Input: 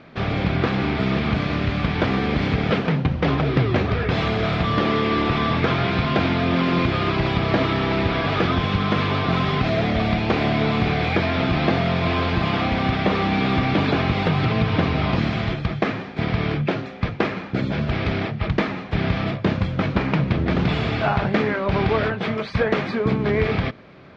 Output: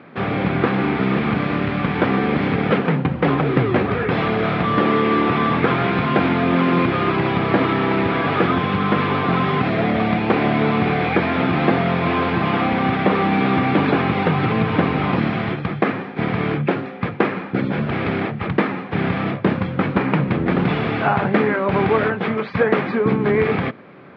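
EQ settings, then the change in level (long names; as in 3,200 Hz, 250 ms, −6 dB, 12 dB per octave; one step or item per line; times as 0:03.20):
band-pass filter 160–2,300 Hz
notch filter 640 Hz, Q 12
+4.5 dB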